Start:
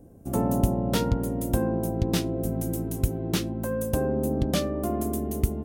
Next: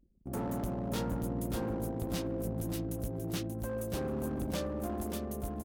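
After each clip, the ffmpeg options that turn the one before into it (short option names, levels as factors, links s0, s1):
-af "anlmdn=1,asoftclip=type=hard:threshold=0.0668,aecho=1:1:583|1166|1749:0.501|0.12|0.0289,volume=0.398"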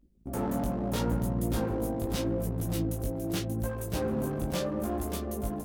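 -af "flanger=delay=16:depth=5.5:speed=0.78,volume=2.37"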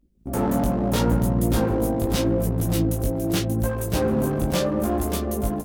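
-af "dynaudnorm=f=160:g=3:m=2.66"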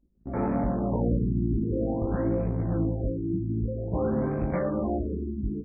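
-af "afftfilt=real='re*lt(b*sr/1024,380*pow(2600/380,0.5+0.5*sin(2*PI*0.51*pts/sr)))':imag='im*lt(b*sr/1024,380*pow(2600/380,0.5+0.5*sin(2*PI*0.51*pts/sr)))':win_size=1024:overlap=0.75,volume=0.596"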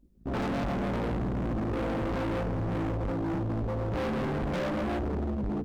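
-af "volume=59.6,asoftclip=hard,volume=0.0168,volume=2.11"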